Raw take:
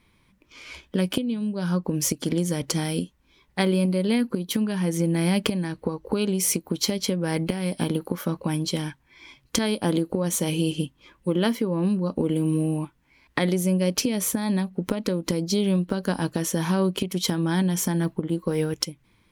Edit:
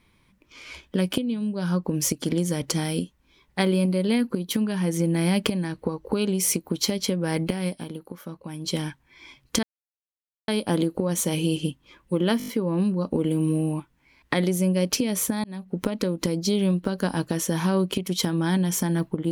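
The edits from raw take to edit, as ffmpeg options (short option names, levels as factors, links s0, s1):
-filter_complex "[0:a]asplit=10[s0][s1][s2][s3][s4][s5][s6][s7][s8][s9];[s0]atrim=end=8.14,asetpts=PTS-STARTPTS,afade=t=out:st=7.68:d=0.46:c=exp:silence=0.298538[s10];[s1]atrim=start=8.14:end=8.23,asetpts=PTS-STARTPTS,volume=0.299[s11];[s2]atrim=start=8.23:end=9.63,asetpts=PTS-STARTPTS,afade=t=in:d=0.46:c=exp:silence=0.298538,afade=t=out:st=1.396:d=0.004:c=hsin,apad=pad_dur=0.85[s12];[s3]atrim=start=9.63:end=11.552,asetpts=PTS-STARTPTS,afade=t=in:d=0.004:c=hsin[s13];[s4]atrim=start=11.528:end=11.552[s14];[s5]atrim=start=11.528:end=11.552[s15];[s6]atrim=start=11.528:end=11.552[s16];[s7]atrim=start=11.528:end=11.552[s17];[s8]atrim=start=11.528:end=14.49,asetpts=PTS-STARTPTS,afade=t=out:st=2.958:d=0.004:c=hsin[s18];[s9]atrim=start=14.49,asetpts=PTS-STARTPTS,afade=t=in:d=0.35[s19];[s10][s11][s12][s13]concat=n=4:v=0:a=1[s20];[s20][s14]acrossfade=d=0.004:c1=hsin:c2=hsin[s21];[s21][s15]acrossfade=d=0.004:c1=hsin:c2=hsin[s22];[s22][s16]acrossfade=d=0.004:c1=hsin:c2=hsin[s23];[s23][s17]acrossfade=d=0.004:c1=hsin:c2=hsin[s24];[s18][s19]concat=n=2:v=0:a=1[s25];[s24][s25]acrossfade=d=0.004:c1=hsin:c2=hsin"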